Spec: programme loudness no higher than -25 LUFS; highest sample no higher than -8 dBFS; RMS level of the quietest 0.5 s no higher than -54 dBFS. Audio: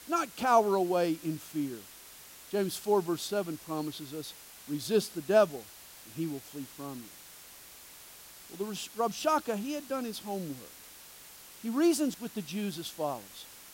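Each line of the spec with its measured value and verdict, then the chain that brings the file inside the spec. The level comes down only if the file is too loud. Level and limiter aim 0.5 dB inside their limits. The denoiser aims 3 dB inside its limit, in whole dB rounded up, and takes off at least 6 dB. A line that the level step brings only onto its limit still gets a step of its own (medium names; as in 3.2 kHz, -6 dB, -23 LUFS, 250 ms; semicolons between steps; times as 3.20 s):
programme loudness -32.0 LUFS: pass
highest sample -11.5 dBFS: pass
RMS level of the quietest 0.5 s -51 dBFS: fail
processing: noise reduction 6 dB, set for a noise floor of -51 dBFS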